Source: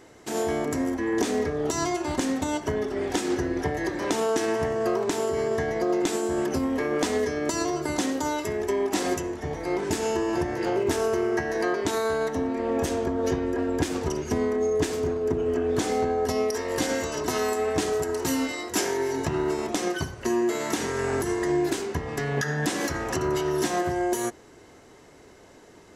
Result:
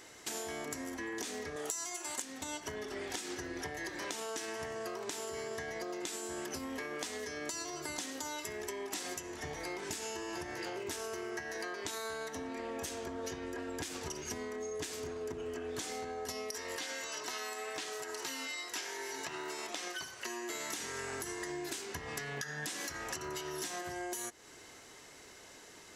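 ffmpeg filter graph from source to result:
-filter_complex "[0:a]asettb=1/sr,asplit=3[a][b][c];[a]atrim=end=1.564[d];[b]atrim=start=1.56:end=2.22,asetpts=PTS-STARTPTS,afade=t=in:d=0.004:c=qsin,afade=t=out:st=0.656:d=0.004:c=qsin,highshelf=f=6k:t=q:w=1.5:g=7,acontrast=32,highpass=f=560:p=1[e];[c]atrim=start=2.216[f];[d][e]acrossfade=d=0.004:c1=hsin:c2=qsin[g];[g][f]acrossfade=d=0.004:c1=qsin:c2=hsin,asettb=1/sr,asplit=3[h][i][j];[h]atrim=end=16.764[k];[i]atrim=start=16.76:end=20.5,asetpts=PTS-STARTPTS,afade=t=in:d=0.004:c=qsin,afade=t=out:st=3.736:d=0.004:c=qsin,highpass=f=550:p=1,acrossover=split=5000[l][m];[m]acompressor=threshold=-44dB:ratio=4:attack=1:release=60[n];[l][n]amix=inputs=2:normalize=0[o];[j]atrim=start=20.496[p];[k][o]acrossfade=d=0.004:c1=hsin:c2=qsin[q];[q][p]acrossfade=d=0.004:c1=qsin:c2=hsin,tiltshelf=f=1.2k:g=-7.5,acompressor=threshold=-36dB:ratio=6,volume=-2dB"

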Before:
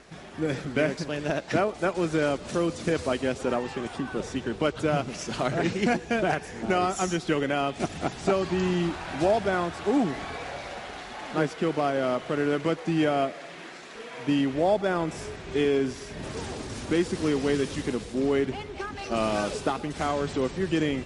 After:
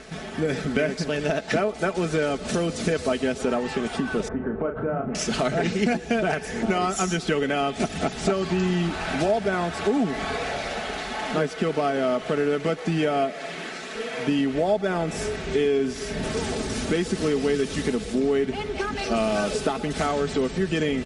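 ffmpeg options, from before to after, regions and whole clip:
-filter_complex "[0:a]asettb=1/sr,asplit=3[a][b][c];[a]atrim=end=4.284[d];[b]atrim=start=4.28:end=5.15,asetpts=PTS-STARTPTS,afade=t=in:d=0.004:c=qsin,afade=t=out:st=0.866:d=0.004:c=qsin,lowpass=f=1.5k:w=0.5412,lowpass=f=1.5k:w=1.3066,acompressor=threshold=-35dB:ratio=2:attack=3.2:release=140:knee=1:detection=peak,asplit=2[e][f];[f]adelay=36,volume=-6.5dB[g];[e][g]amix=inputs=2:normalize=0,atrim=end_sample=38367[h];[c]atrim=start=5.146[i];[d][h]acrossfade=d=0.004:c1=hsin:c2=qsin[j];[j][i]acrossfade=d=0.004:c1=qsin:c2=hsin,equalizer=f=1k:w=7.7:g=-8.5,aecho=1:1:4.6:0.46,acompressor=threshold=-31dB:ratio=2.5,volume=8dB"

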